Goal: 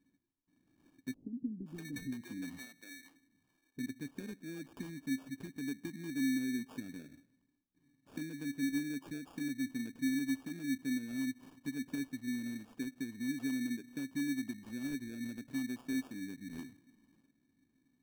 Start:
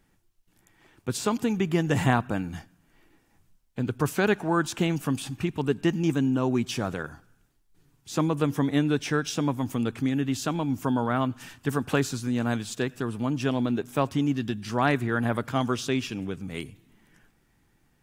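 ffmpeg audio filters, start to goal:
-filter_complex "[0:a]bass=f=250:g=7,treble=f=4k:g=-9,acompressor=threshold=-33dB:ratio=2.5,asplit=3[a][b][c];[a]bandpass=f=270:t=q:w=8,volume=0dB[d];[b]bandpass=f=2.29k:t=q:w=8,volume=-6dB[e];[c]bandpass=f=3.01k:t=q:w=8,volume=-9dB[f];[d][e][f]amix=inputs=3:normalize=0,acrusher=samples=22:mix=1:aa=0.000001,asettb=1/sr,asplit=3[g][h][i];[g]atrim=end=1.144[j];[h]atrim=start=1.14:end=3.79,asetpts=PTS-STARTPTS,afade=t=in:d=0.004:c=qsin,afade=t=out:st=2.646:d=0.004:c=qsin,acrossover=split=420[k][l];[l]adelay=520[m];[k][m]amix=inputs=2:normalize=0,atrim=end_sample=116865[n];[i]atrim=start=3.786[o];[j][n]acrossfade=d=0.004:c1=hsin:c2=qsin[p];[p][o]acrossfade=d=0.004:c1=qsin:c2=hsin,volume=1dB"

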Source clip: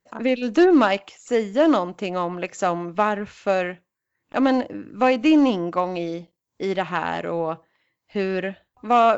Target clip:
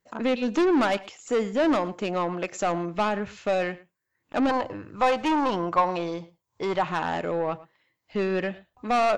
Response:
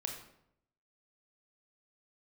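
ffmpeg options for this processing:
-filter_complex "[0:a]asoftclip=type=tanh:threshold=-18dB,asettb=1/sr,asplit=3[a][b][c];[a]atrim=end=4.494[d];[b]atrim=start=4.49:end=6.85,asetpts=PTS-STARTPTS,afade=t=in:d=0.004:c=qsin,afade=t=out:st=2.356:d=0.004:c=qsin,equalizer=f=100:t=o:w=0.67:g=8,equalizer=f=250:t=o:w=0.67:g=-9,equalizer=f=1k:t=o:w=0.67:g=9[e];[c]atrim=start=6.846[f];[d][e]acrossfade=d=0.004:c1=hsin:c2=qsin[g];[g][f]acrossfade=d=0.004:c1=qsin:c2=hsin,asplit=2[h][i];[i]adelay=110.8,volume=-20dB,highshelf=f=4k:g=-2.49[j];[h][j]amix=inputs=2:normalize=0"

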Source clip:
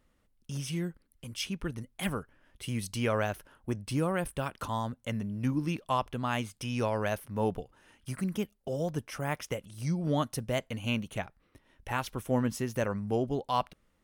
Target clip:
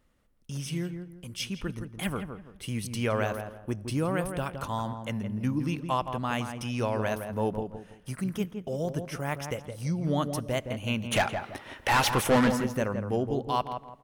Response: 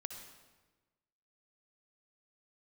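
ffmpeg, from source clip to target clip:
-filter_complex "[0:a]asplit=3[a][b][c];[a]afade=t=out:st=11.11:d=0.02[d];[b]asplit=2[e][f];[f]highpass=f=720:p=1,volume=29dB,asoftclip=type=tanh:threshold=-15.5dB[g];[e][g]amix=inputs=2:normalize=0,lowpass=f=5.3k:p=1,volume=-6dB,afade=t=in:st=11.11:d=0.02,afade=t=out:st=12.5:d=0.02[h];[c]afade=t=in:st=12.5:d=0.02[i];[d][h][i]amix=inputs=3:normalize=0,asplit=2[j][k];[k]adelay=166,lowpass=f=1.4k:p=1,volume=-6.5dB,asplit=2[l][m];[m]adelay=166,lowpass=f=1.4k:p=1,volume=0.32,asplit=2[n][o];[o]adelay=166,lowpass=f=1.4k:p=1,volume=0.32,asplit=2[p][q];[q]adelay=166,lowpass=f=1.4k:p=1,volume=0.32[r];[j][l][n][p][r]amix=inputs=5:normalize=0,asplit=2[s][t];[1:a]atrim=start_sample=2205[u];[t][u]afir=irnorm=-1:irlink=0,volume=-16dB[v];[s][v]amix=inputs=2:normalize=0"

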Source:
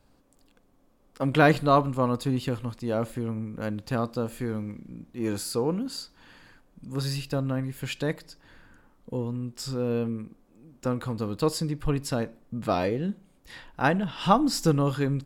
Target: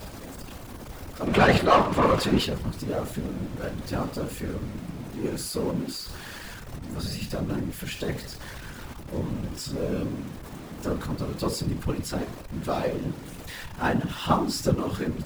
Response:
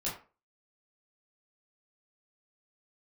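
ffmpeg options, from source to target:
-filter_complex "[0:a]aeval=exprs='val(0)+0.5*0.0282*sgn(val(0))':c=same,asettb=1/sr,asplit=3[a][b][c];[a]atrim=end=1.274[d];[b]atrim=start=1.27:end=2.45,asetpts=PTS-STARTPTS,afade=t=in:d=0.004:c=qsin,afade=t=out:st=1.176:d=0.004:c=qsin,asplit=2[e][f];[f]highpass=f=720:p=1,volume=22dB,asoftclip=type=tanh:threshold=-6dB[g];[e][g]amix=inputs=2:normalize=0,lowpass=f=2.5k:p=1,volume=-6dB[h];[c]atrim=start=2.446[i];[d][h]acrossfade=d=0.004:c1=hsin:c2=qsin[j];[j][i]acrossfade=d=0.004:c1=qsin:c2=hsin,asplit=2[k][l];[1:a]atrim=start_sample=2205,afade=t=out:st=0.23:d=0.01,atrim=end_sample=10584,lowshelf=f=110:g=6[m];[l][m]afir=irnorm=-1:irlink=0,volume=-9.5dB[n];[k][n]amix=inputs=2:normalize=0,afftfilt=real='hypot(re,im)*cos(2*PI*random(0))':imag='hypot(re,im)*sin(2*PI*random(1))':win_size=512:overlap=0.75"

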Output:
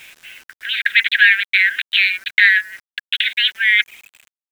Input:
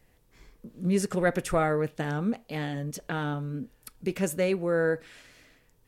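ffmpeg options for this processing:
-af "asetrate=57330,aresample=44100,anlmdn=1,areverse,acompressor=threshold=-36dB:ratio=8,areverse,aeval=exprs='0.0668*sin(PI/2*2.24*val(0)/0.0668)':c=same,asuperpass=centerf=2500:order=20:qfactor=1,acompressor=mode=upward:threshold=-42dB:ratio=2.5,apsyclip=29dB,acrusher=bits=6:mix=0:aa=0.000001,volume=-2dB"

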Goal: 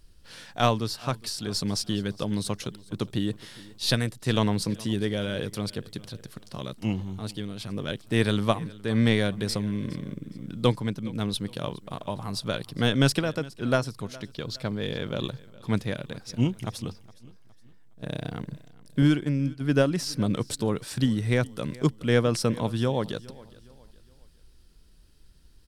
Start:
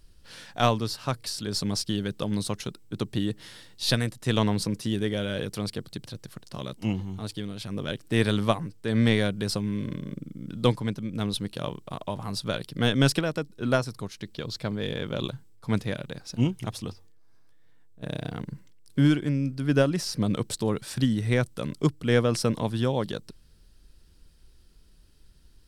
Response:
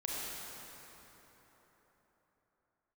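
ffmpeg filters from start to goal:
-filter_complex "[0:a]aecho=1:1:414|828|1242:0.0891|0.0339|0.0129,asettb=1/sr,asplit=3[a][b][c];[a]atrim=end=19.024[d];[b]atrim=start=19.02:end=19.62,asetpts=PTS-STARTPTS,afade=t=in:d=0.004:c=qsin,afade=t=out:st=0.596:d=0.004:c=qsin,agate=range=-10dB:threshold=-29dB:ratio=16:detection=peak[e];[c]atrim=start=19.616[f];[d][e]acrossfade=d=0.004:c1=hsin:c2=qsin[g];[g][f]acrossfade=d=0.004:c1=qsin:c2=hsin"

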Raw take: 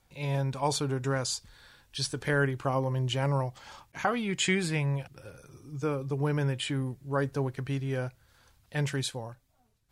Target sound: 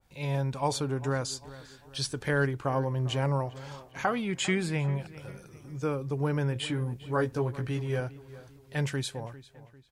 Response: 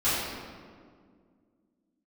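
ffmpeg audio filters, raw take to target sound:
-filter_complex "[0:a]asettb=1/sr,asplit=3[a][b][c];[a]atrim=end=6.544[d];[b]atrim=start=6.54:end=8,asetpts=PTS-STARTPTS,afade=t=in:d=0.004:c=qsin,afade=t=out:st=1.456:d=0.004:c=qsin,asplit=2[e][f];[f]adelay=17,volume=-4.5dB[g];[e][g]amix=inputs=2:normalize=0,atrim=end_sample=64386[h];[c]atrim=start=7.996[i];[d][h]acrossfade=d=0.004:c1=hsin:c2=qsin[j];[j][i]acrossfade=d=0.004:c1=qsin:c2=hsin,asplit=2[k][l];[l]adelay=398,lowpass=f=2.6k:p=1,volume=-17dB,asplit=2[m][n];[n]adelay=398,lowpass=f=2.6k:p=1,volume=0.45,asplit=2[o][p];[p]adelay=398,lowpass=f=2.6k:p=1,volume=0.45,asplit=2[q][r];[r]adelay=398,lowpass=f=2.6k:p=1,volume=0.45[s];[k][m][o][q][s]amix=inputs=5:normalize=0,adynamicequalizer=threshold=0.00708:dfrequency=1800:dqfactor=0.7:tfrequency=1800:tqfactor=0.7:attack=5:release=100:ratio=0.375:range=2.5:mode=cutabove:tftype=highshelf"

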